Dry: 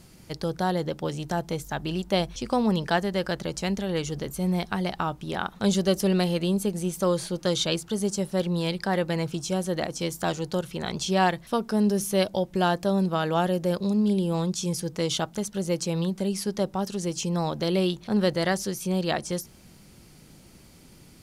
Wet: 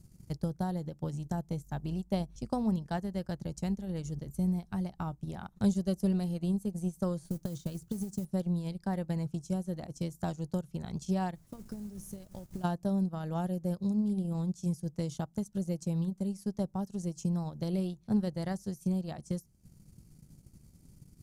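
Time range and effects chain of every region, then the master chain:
0:07.24–0:08.25: downward compressor 8 to 1, threshold −28 dBFS + low-shelf EQ 320 Hz +5 dB + noise that follows the level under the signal 16 dB
0:11.34–0:12.63: downward compressor 10 to 1, threshold −31 dBFS + background noise pink −47 dBFS
whole clip: drawn EQ curve 140 Hz 0 dB, 410 Hz −14 dB, 3,300 Hz −20 dB, 6,700 Hz −8 dB; transient designer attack +7 dB, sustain −10 dB; dynamic equaliser 780 Hz, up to +5 dB, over −49 dBFS, Q 1.2; level −2.5 dB

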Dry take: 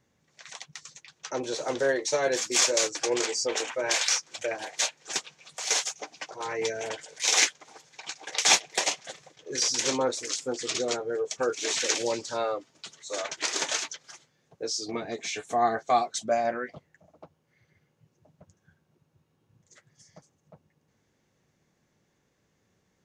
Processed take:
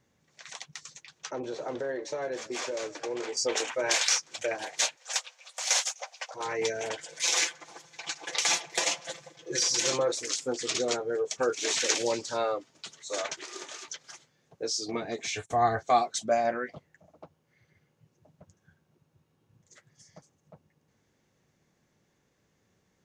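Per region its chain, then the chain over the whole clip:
0:01.31–0:03.37: low-pass filter 1,300 Hz 6 dB per octave + downward compressor 3 to 1, threshold −31 dBFS + echo with shifted repeats 156 ms, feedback 56%, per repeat +31 Hz, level −20.5 dB
0:04.96–0:06.34: linear-phase brick-wall high-pass 470 Hz + high-shelf EQ 12,000 Hz +3.5 dB
0:07.02–0:10.12: comb filter 5.9 ms, depth 85% + downward compressor 5 to 1, threshold −22 dBFS + delay with a band-pass on its return 82 ms, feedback 37%, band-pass 780 Hz, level −14.5 dB
0:13.37–0:13.88: downward compressor 3 to 1, threshold −44 dBFS + hollow resonant body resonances 370/1,200 Hz, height 14 dB, ringing for 85 ms
0:15.27–0:15.84: noise gate −48 dBFS, range −22 dB + low shelf with overshoot 140 Hz +12.5 dB, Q 1.5 + one half of a high-frequency compander decoder only
whole clip: no processing

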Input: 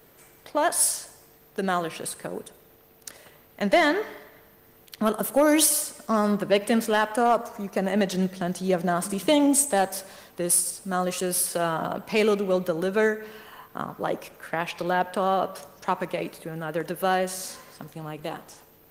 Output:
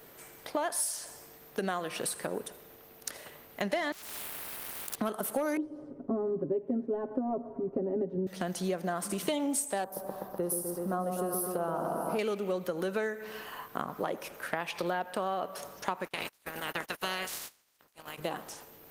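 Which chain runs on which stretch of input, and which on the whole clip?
0:03.92–0:04.96: inverse Chebyshev band-stop filter 1,700–4,900 Hz, stop band 50 dB + leveller curve on the samples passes 5 + every bin compressed towards the loudest bin 10 to 1
0:05.57–0:08.27: low-pass with resonance 340 Hz, resonance Q 1.6 + comb filter 7.4 ms, depth 99%
0:09.84–0:12.19: flat-topped bell 3,900 Hz −16 dB 2.7 octaves + echo whose low-pass opens from repeat to repeat 125 ms, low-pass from 750 Hz, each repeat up 1 octave, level −3 dB
0:16.04–0:18.17: ceiling on every frequency bin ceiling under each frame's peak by 24 dB + noise gate −35 dBFS, range −26 dB + downward compressor 1.5 to 1, threshold −42 dBFS
whole clip: low-shelf EQ 180 Hz −6.5 dB; downward compressor 6 to 1, threshold −32 dBFS; level +2.5 dB

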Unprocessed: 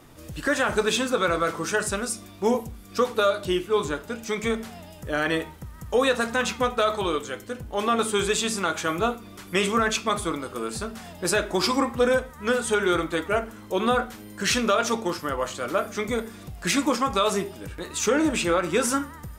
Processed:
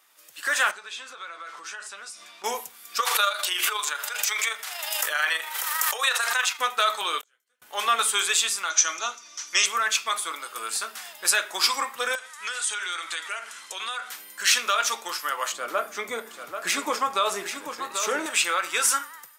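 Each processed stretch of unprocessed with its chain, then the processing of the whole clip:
0:00.71–0:02.44: downward compressor, threshold −37 dBFS + high-frequency loss of the air 75 metres + double-tracking delay 15 ms −12 dB
0:03.00–0:06.59: high-pass filter 610 Hz + amplitude modulation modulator 25 Hz, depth 30% + background raised ahead of every attack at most 25 dB per second
0:07.21–0:07.62: gate with flip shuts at −35 dBFS, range −34 dB + micro pitch shift up and down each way 52 cents
0:08.70–0:09.66: low-pass with resonance 6,000 Hz, resonance Q 11 + comb filter 3.3 ms, depth 34%
0:12.15–0:14.10: low-pass filter 9,400 Hz 24 dB per octave + tilt shelving filter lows −6 dB, about 1,300 Hz + downward compressor 4 to 1, threshold −32 dBFS
0:15.52–0:18.26: tilt shelving filter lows +9 dB, about 870 Hz + single-tap delay 787 ms −8 dB
whole clip: high-pass filter 1,300 Hz 12 dB per octave; high-shelf EQ 12,000 Hz +7.5 dB; automatic gain control gain up to 12 dB; level −5 dB

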